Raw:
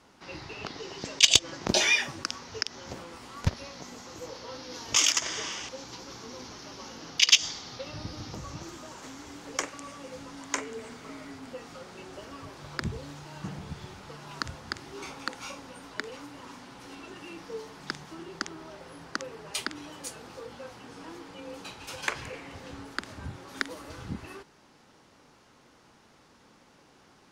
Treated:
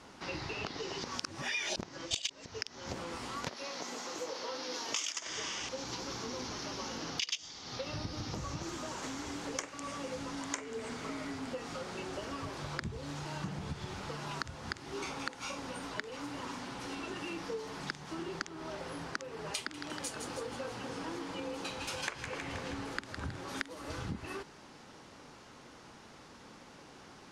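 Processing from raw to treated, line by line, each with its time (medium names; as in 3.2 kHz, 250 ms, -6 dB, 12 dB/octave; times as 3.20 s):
1.04–2.46 s: reverse
3.45–5.27 s: high-pass 300 Hz
19.58–23.41 s: two-band feedback delay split 1.3 kHz, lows 251 ms, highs 159 ms, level -9.5 dB
whole clip: low-pass 11 kHz 12 dB/octave; compression 5:1, threshold -41 dBFS; trim +5 dB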